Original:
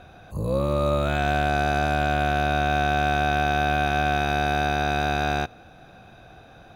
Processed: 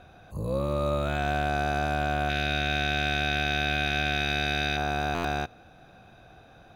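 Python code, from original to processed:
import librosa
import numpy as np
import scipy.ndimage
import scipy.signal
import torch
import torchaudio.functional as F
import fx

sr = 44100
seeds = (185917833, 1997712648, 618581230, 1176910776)

y = fx.graphic_eq(x, sr, hz=(1000, 2000, 4000), db=(-11, 8, 8), at=(2.29, 4.77))
y = fx.buffer_glitch(y, sr, at_s=(5.14,), block=512, repeats=8)
y = y * 10.0 ** (-4.5 / 20.0)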